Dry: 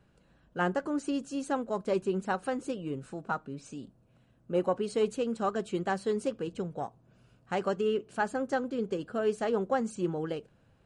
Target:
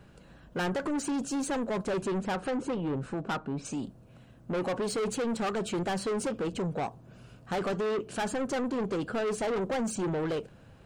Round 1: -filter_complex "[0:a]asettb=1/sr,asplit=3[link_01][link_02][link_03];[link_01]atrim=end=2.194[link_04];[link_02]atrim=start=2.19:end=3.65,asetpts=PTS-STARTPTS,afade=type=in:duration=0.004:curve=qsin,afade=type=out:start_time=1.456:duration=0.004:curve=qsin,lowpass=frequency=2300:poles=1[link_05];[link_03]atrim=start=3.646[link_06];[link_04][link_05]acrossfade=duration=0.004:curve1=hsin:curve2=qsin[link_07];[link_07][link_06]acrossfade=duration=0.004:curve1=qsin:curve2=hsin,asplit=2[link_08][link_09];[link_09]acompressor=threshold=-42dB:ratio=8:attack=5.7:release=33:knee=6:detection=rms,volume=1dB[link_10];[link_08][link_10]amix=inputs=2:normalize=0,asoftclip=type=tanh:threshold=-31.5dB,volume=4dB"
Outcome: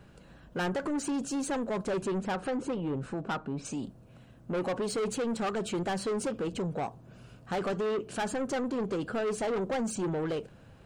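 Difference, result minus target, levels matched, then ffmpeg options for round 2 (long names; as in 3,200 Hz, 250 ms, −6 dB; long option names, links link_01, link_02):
downward compressor: peak gain reduction +9 dB
-filter_complex "[0:a]asettb=1/sr,asplit=3[link_01][link_02][link_03];[link_01]atrim=end=2.194[link_04];[link_02]atrim=start=2.19:end=3.65,asetpts=PTS-STARTPTS,afade=type=in:duration=0.004:curve=qsin,afade=type=out:start_time=1.456:duration=0.004:curve=qsin,lowpass=frequency=2300:poles=1[link_05];[link_03]atrim=start=3.646[link_06];[link_04][link_05]acrossfade=duration=0.004:curve1=hsin:curve2=qsin[link_07];[link_07][link_06]acrossfade=duration=0.004:curve1=qsin:curve2=hsin,asplit=2[link_08][link_09];[link_09]acompressor=threshold=-31.5dB:ratio=8:attack=5.7:release=33:knee=6:detection=rms,volume=1dB[link_10];[link_08][link_10]amix=inputs=2:normalize=0,asoftclip=type=tanh:threshold=-31.5dB,volume=4dB"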